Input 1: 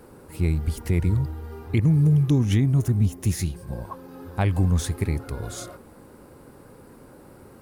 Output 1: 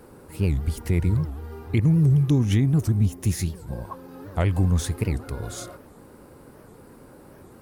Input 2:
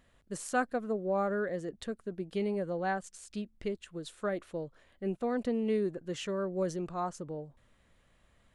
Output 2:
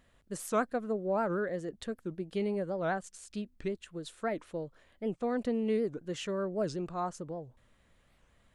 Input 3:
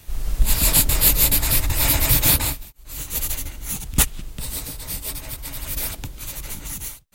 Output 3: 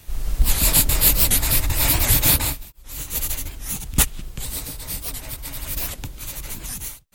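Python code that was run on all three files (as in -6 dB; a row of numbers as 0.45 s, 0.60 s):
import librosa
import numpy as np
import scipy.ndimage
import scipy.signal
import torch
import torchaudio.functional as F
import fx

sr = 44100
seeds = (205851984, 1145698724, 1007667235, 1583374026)

y = fx.record_warp(x, sr, rpm=78.0, depth_cents=250.0)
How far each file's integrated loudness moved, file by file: 0.0 LU, 0.0 LU, 0.0 LU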